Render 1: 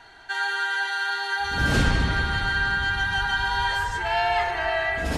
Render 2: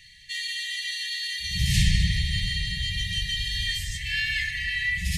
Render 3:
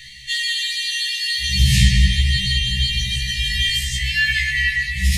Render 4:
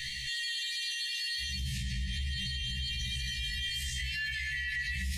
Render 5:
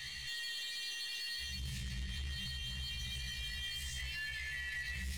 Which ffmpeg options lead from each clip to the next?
-af "afftfilt=real='re*(1-between(b*sr/4096,200,1700))':imag='im*(1-between(b*sr/4096,200,1700))':win_size=4096:overlap=0.75,highshelf=f=5900:g=7.5,volume=1.19"
-filter_complex "[0:a]asplit=2[s0][s1];[s1]acompressor=threshold=0.0178:ratio=6,volume=1.06[s2];[s0][s2]amix=inputs=2:normalize=0,afftfilt=real='re*1.73*eq(mod(b,3),0)':imag='im*1.73*eq(mod(b,3),0)':win_size=2048:overlap=0.75,volume=2.51"
-af "acompressor=threshold=0.0631:ratio=6,alimiter=level_in=1.68:limit=0.0631:level=0:latency=1:release=97,volume=0.596,volume=1.19"
-af "aeval=exprs='0.0473*(cos(1*acos(clip(val(0)/0.0473,-1,1)))-cos(1*PI/2))+0.00841*(cos(3*acos(clip(val(0)/0.0473,-1,1)))-cos(3*PI/2))+0.00422*(cos(5*acos(clip(val(0)/0.0473,-1,1)))-cos(5*PI/2))+0.00188*(cos(6*acos(clip(val(0)/0.0473,-1,1)))-cos(6*PI/2))':c=same,volume=0.596"

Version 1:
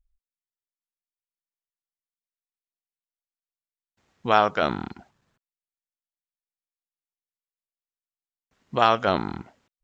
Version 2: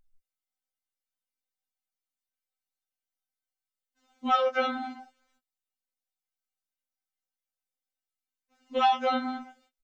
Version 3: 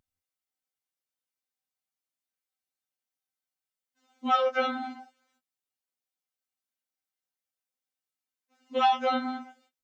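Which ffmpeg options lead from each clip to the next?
-filter_complex "[0:a]asplit=2[s0][s1];[s1]adelay=13,volume=0.75[s2];[s0][s2]amix=inputs=2:normalize=0,acompressor=threshold=0.0501:ratio=1.5,afftfilt=real='re*3.46*eq(mod(b,12),0)':imag='im*3.46*eq(mod(b,12),0)':win_size=2048:overlap=0.75,volume=1.12"
-af "highpass=77"

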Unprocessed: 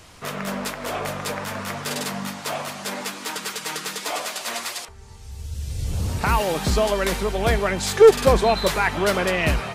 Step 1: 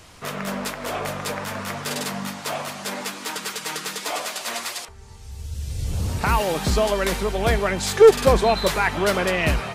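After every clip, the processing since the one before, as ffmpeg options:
-af anull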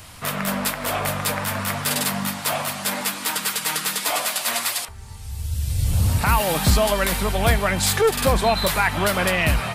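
-af "highshelf=f=7000:g=10.5,alimiter=limit=0.299:level=0:latency=1:release=191,equalizer=f=100:t=o:w=0.67:g=4,equalizer=f=400:t=o:w=0.67:g=-8,equalizer=f=6300:t=o:w=0.67:g=-6,volume=1.58"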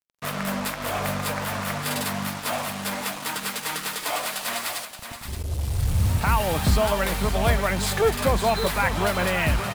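-af "highshelf=f=3600:g=-6.5,acrusher=bits=4:mix=0:aa=0.5,aecho=1:1:573:0.335,volume=0.75"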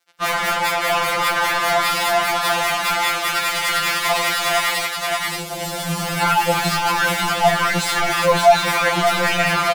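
-filter_complex "[0:a]asplit=2[s0][s1];[s1]highpass=f=720:p=1,volume=31.6,asoftclip=type=tanh:threshold=0.398[s2];[s0][s2]amix=inputs=2:normalize=0,lowpass=f=3300:p=1,volume=0.501,asplit=2[s3][s4];[s4]adelay=13,volume=0.237[s5];[s3][s5]amix=inputs=2:normalize=0,afftfilt=real='re*2.83*eq(mod(b,8),0)':imag='im*2.83*eq(mod(b,8),0)':win_size=2048:overlap=0.75"

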